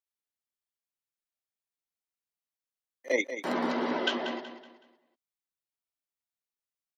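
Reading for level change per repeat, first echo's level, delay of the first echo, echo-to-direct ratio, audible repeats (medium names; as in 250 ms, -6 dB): -9.0 dB, -10.5 dB, 187 ms, -10.0 dB, 3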